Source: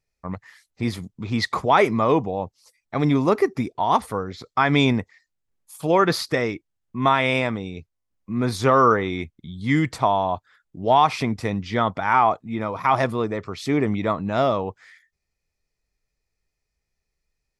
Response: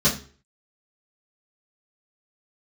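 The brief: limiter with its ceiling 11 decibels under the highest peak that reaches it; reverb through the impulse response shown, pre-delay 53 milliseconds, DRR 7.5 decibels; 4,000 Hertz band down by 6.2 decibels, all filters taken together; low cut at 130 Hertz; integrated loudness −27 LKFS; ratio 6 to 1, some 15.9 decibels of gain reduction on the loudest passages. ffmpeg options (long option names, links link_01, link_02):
-filter_complex "[0:a]highpass=130,equalizer=frequency=4000:width_type=o:gain=-7.5,acompressor=threshold=-30dB:ratio=6,alimiter=level_in=2dB:limit=-24dB:level=0:latency=1,volume=-2dB,asplit=2[link_01][link_02];[1:a]atrim=start_sample=2205,adelay=53[link_03];[link_02][link_03]afir=irnorm=-1:irlink=0,volume=-22.5dB[link_04];[link_01][link_04]amix=inputs=2:normalize=0,volume=8dB"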